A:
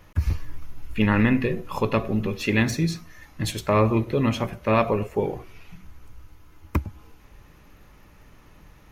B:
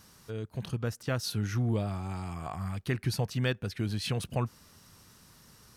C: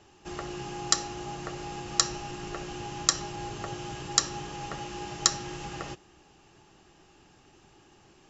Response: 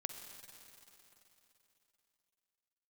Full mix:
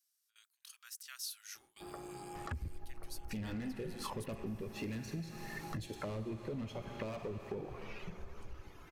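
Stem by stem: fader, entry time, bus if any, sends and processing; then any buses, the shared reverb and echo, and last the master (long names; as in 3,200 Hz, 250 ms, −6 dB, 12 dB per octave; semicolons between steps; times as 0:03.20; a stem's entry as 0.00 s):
−2.0 dB, 2.35 s, bus A, send −8 dB, parametric band 1,700 Hz +4 dB 2.9 octaves; reverb reduction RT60 1.1 s; hard clipping −20.5 dBFS, distortion −8 dB
−0.5 dB, 0.00 s, no bus, no send, high-pass filter 1,200 Hz 24 dB per octave; first difference
−7.5 dB, 1.55 s, bus A, no send, low-pass filter 1,100 Hz 12 dB per octave; low-shelf EQ 180 Hz −8.5 dB
bus A: 0.0 dB, treble cut that deepens with the level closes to 610 Hz, closed at −26.5 dBFS; brickwall limiter −27 dBFS, peak gain reduction 5.5 dB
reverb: on, RT60 3.4 s, pre-delay 43 ms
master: noise gate with hold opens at −48 dBFS; downward compressor, threshold −39 dBFS, peak gain reduction 13 dB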